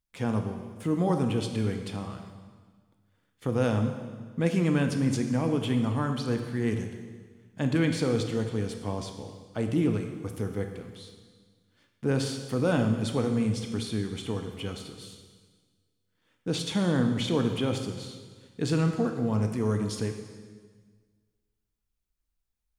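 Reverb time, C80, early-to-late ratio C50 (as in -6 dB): 1.5 s, 8.0 dB, 6.5 dB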